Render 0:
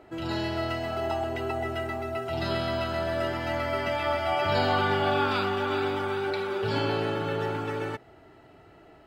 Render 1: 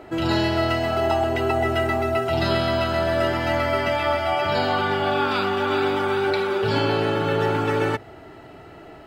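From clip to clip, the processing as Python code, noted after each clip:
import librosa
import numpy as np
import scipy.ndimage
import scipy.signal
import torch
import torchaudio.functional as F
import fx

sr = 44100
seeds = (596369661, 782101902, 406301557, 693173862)

y = fx.rider(x, sr, range_db=10, speed_s=0.5)
y = fx.hum_notches(y, sr, base_hz=50, count=2)
y = y * librosa.db_to_amplitude(6.5)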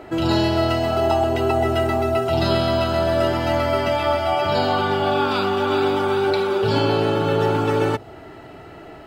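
y = fx.dynamic_eq(x, sr, hz=1900.0, q=1.7, threshold_db=-42.0, ratio=4.0, max_db=-7)
y = y * librosa.db_to_amplitude(3.0)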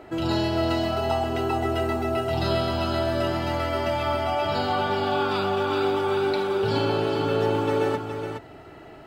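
y = x + 10.0 ** (-6.5 / 20.0) * np.pad(x, (int(418 * sr / 1000.0), 0))[:len(x)]
y = y * librosa.db_to_amplitude(-5.5)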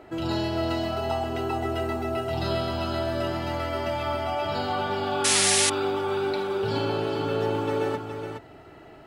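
y = fx.spec_paint(x, sr, seeds[0], shape='noise', start_s=5.24, length_s=0.46, low_hz=1600.0, high_hz=11000.0, level_db=-19.0)
y = fx.quant_float(y, sr, bits=8)
y = y * librosa.db_to_amplitude(-3.0)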